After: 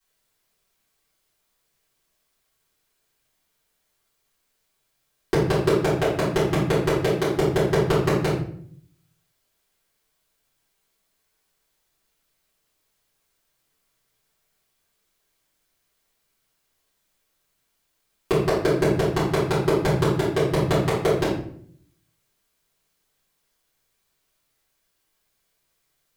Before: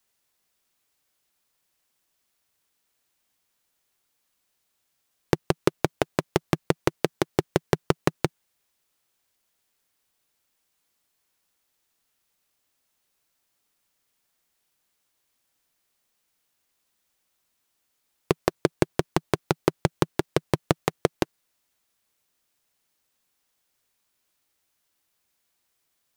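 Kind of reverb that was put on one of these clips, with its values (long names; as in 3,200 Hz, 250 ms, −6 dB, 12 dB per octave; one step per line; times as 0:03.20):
rectangular room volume 87 cubic metres, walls mixed, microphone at 3.7 metres
level −10 dB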